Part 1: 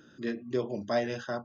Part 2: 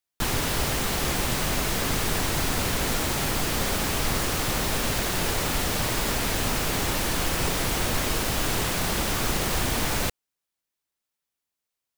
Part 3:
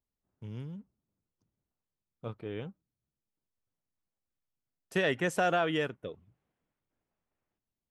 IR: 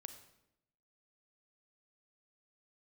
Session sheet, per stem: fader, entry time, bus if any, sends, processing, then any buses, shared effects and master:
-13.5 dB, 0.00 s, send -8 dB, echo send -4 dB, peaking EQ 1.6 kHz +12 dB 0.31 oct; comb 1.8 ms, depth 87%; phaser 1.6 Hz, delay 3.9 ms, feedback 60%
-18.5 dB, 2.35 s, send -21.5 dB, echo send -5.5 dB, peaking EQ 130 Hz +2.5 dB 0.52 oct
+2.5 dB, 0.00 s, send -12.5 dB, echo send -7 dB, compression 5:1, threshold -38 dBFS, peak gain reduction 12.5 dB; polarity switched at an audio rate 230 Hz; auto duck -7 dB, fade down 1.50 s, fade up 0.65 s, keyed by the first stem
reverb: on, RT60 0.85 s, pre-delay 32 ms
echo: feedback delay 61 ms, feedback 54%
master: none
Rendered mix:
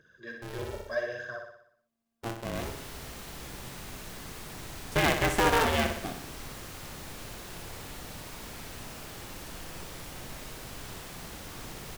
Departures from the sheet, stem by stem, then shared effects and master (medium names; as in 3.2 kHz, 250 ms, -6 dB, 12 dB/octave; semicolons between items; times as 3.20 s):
stem 3: missing compression 5:1, threshold -38 dBFS, peak gain reduction 12.5 dB; reverb return -8.0 dB